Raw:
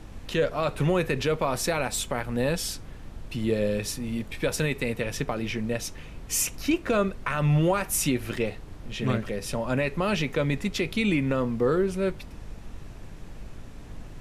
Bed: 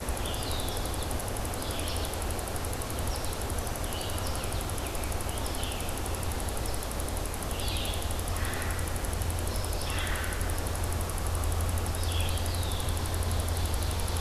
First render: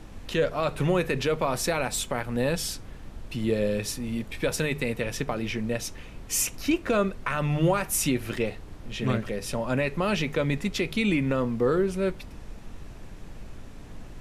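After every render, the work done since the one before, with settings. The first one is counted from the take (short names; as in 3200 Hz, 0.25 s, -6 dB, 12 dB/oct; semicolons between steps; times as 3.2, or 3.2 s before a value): de-hum 50 Hz, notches 3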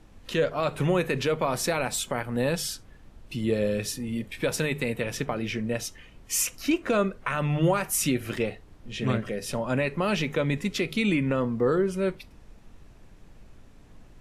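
noise print and reduce 9 dB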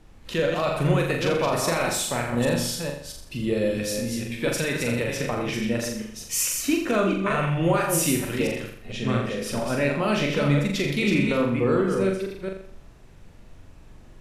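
reverse delay 0.223 s, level -5 dB; flutter echo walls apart 7.2 m, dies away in 0.59 s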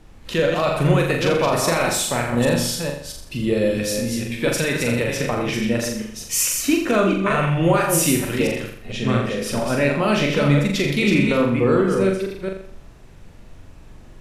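gain +4.5 dB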